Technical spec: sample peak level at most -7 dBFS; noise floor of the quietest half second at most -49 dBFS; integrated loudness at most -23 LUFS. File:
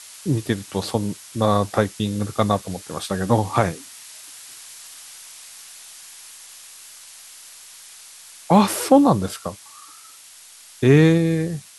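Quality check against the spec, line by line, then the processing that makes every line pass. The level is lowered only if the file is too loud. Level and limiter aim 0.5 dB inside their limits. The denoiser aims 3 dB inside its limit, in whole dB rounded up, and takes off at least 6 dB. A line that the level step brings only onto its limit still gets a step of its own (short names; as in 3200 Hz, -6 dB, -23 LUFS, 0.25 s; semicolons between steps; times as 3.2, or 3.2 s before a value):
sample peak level -2.5 dBFS: fail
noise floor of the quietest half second -45 dBFS: fail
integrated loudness -20.0 LUFS: fail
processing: denoiser 6 dB, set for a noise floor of -45 dBFS; gain -3.5 dB; limiter -7.5 dBFS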